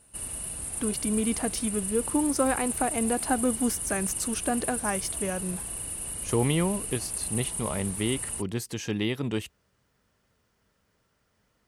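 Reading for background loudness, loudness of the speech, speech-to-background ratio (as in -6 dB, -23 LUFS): -31.5 LUFS, -30.0 LUFS, 1.5 dB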